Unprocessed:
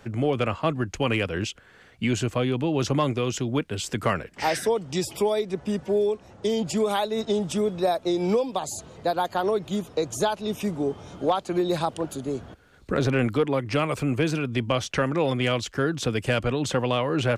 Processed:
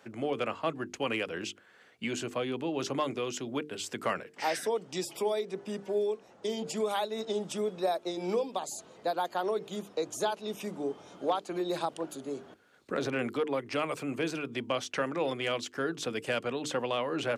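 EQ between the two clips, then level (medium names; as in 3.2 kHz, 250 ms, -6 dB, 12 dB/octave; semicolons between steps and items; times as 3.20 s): high-pass 240 Hz 12 dB/octave; hum notches 50/100/150/200/250/300/350/400/450 Hz; -6.0 dB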